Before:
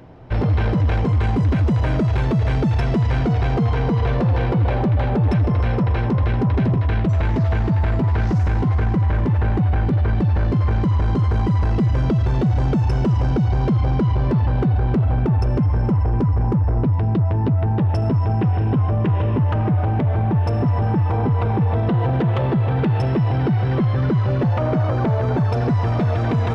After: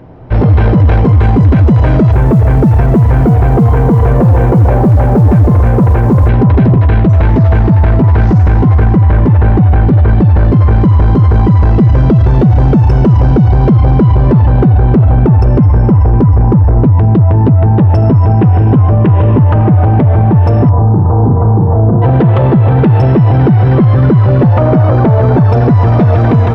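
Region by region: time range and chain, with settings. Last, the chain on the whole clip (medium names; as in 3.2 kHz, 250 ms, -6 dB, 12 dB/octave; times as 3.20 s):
2.12–6.29 s: low-pass 1.9 kHz + short-mantissa float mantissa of 4-bit
20.69–22.02 s: low-pass 1.2 kHz 24 dB/octave + flutter echo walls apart 6.3 m, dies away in 0.41 s
whole clip: treble shelf 2.1 kHz -11 dB; level rider; loudness maximiser +9.5 dB; trim -1 dB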